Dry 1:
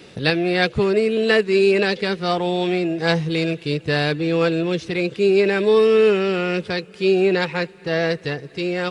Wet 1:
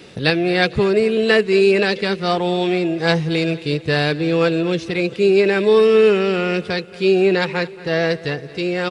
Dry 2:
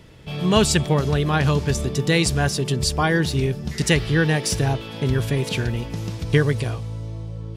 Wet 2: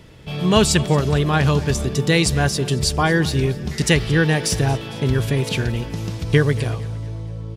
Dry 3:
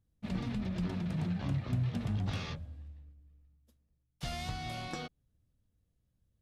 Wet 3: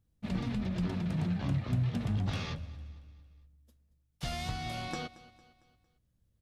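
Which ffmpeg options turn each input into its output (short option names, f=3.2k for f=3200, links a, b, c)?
-af "aecho=1:1:227|454|681|908:0.106|0.0508|0.0244|0.0117,volume=2dB"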